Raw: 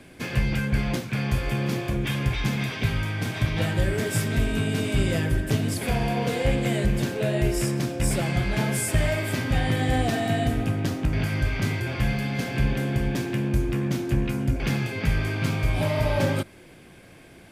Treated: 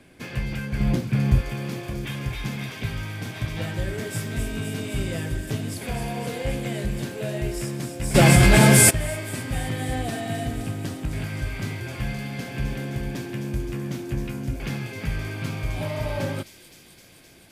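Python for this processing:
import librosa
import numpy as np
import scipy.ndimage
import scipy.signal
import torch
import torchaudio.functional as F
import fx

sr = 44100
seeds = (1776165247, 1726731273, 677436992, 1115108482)

y = fx.low_shelf(x, sr, hz=440.0, db=11.5, at=(0.8, 1.41))
y = fx.echo_wet_highpass(y, sr, ms=259, feedback_pct=80, hz=5100.0, wet_db=-5)
y = fx.env_flatten(y, sr, amount_pct=100, at=(8.14, 8.89), fade=0.02)
y = y * librosa.db_to_amplitude(-4.5)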